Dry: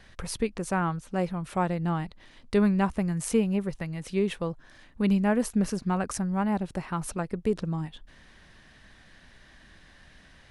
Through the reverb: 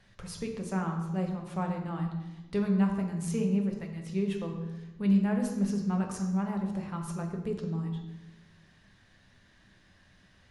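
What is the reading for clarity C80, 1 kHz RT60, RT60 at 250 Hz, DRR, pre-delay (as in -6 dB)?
7.5 dB, 0.95 s, 1.4 s, 2.0 dB, 3 ms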